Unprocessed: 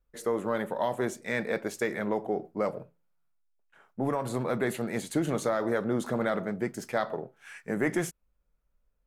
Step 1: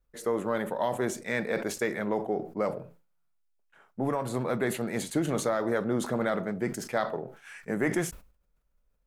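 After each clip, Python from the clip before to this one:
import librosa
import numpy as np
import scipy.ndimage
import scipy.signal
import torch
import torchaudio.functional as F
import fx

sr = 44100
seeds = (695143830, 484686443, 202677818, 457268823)

y = fx.sustainer(x, sr, db_per_s=120.0)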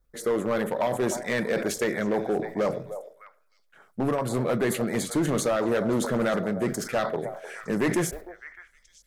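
y = fx.echo_stepped(x, sr, ms=304, hz=650.0, octaves=1.4, feedback_pct=70, wet_db=-10.0)
y = fx.filter_lfo_notch(y, sr, shape='square', hz=9.8, low_hz=910.0, high_hz=2700.0, q=2.1)
y = np.clip(y, -10.0 ** (-24.0 / 20.0), 10.0 ** (-24.0 / 20.0))
y = F.gain(torch.from_numpy(y), 5.0).numpy()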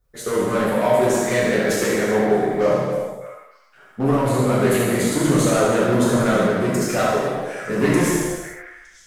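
y = x + 10.0 ** (-7.0 / 20.0) * np.pad(x, (int(75 * sr / 1000.0), 0))[:len(x)]
y = fx.rev_gated(y, sr, seeds[0], gate_ms=460, shape='falling', drr_db=-6.5)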